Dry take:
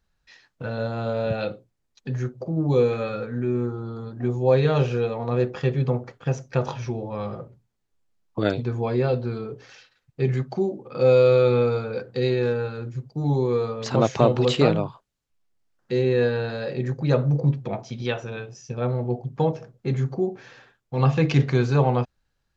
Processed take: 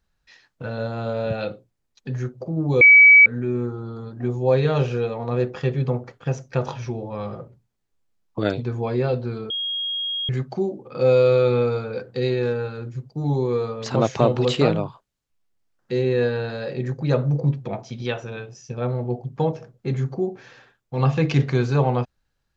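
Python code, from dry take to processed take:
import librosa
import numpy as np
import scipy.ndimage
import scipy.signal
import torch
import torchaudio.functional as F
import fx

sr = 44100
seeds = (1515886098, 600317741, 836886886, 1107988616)

y = fx.edit(x, sr, fx.bleep(start_s=2.81, length_s=0.45, hz=2280.0, db=-6.5),
    fx.bleep(start_s=9.5, length_s=0.79, hz=3270.0, db=-23.5), tone=tone)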